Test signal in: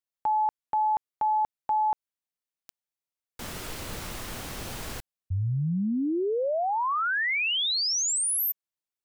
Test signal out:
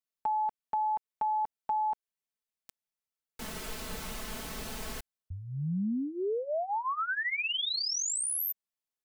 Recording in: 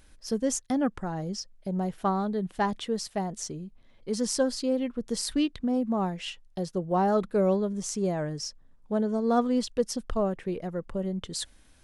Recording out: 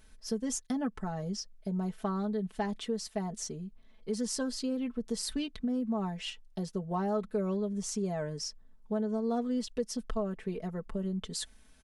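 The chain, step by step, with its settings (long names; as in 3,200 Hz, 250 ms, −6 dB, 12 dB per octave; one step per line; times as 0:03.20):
comb filter 4.6 ms, depth 75%
downward compressor 2.5 to 1, threshold −26 dBFS
level −4.5 dB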